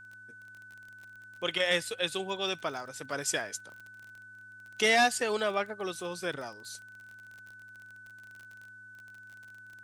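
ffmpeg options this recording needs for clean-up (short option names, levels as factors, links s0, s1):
-af "adeclick=t=4,bandreject=f=106.9:t=h:w=4,bandreject=f=213.8:t=h:w=4,bandreject=f=320.7:t=h:w=4,bandreject=f=1500:w=30,agate=range=0.0891:threshold=0.00708"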